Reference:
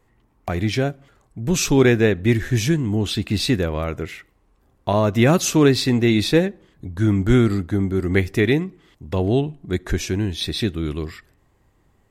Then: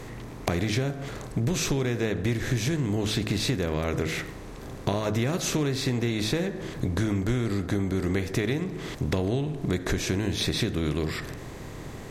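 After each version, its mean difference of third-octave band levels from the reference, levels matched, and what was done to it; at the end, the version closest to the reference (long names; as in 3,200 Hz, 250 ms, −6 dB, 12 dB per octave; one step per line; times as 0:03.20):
8.5 dB: compressor on every frequency bin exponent 0.6
parametric band 130 Hz +4.5 dB 0.64 octaves
hum removal 53.69 Hz, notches 35
downward compressor 10 to 1, threshold −23 dBFS, peak gain reduction 16.5 dB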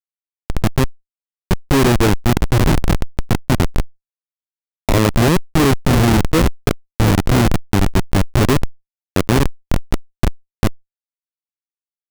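14.0 dB: delay that plays each chunk backwards 561 ms, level −7 dB
low-pass filter 1,400 Hz 12 dB per octave
comparator with hysteresis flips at −14.5 dBFS
envelope flattener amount 50%
level +7.5 dB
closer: first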